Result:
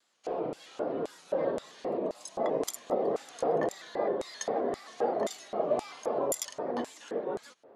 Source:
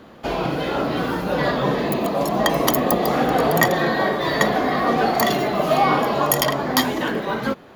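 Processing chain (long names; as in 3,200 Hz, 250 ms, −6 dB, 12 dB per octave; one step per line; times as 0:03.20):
auto-filter band-pass square 1.9 Hz 480–7,600 Hz
Butterworth low-pass 11,000 Hz 36 dB per octave
pitch modulation by a square or saw wave square 3.8 Hz, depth 100 cents
level −4 dB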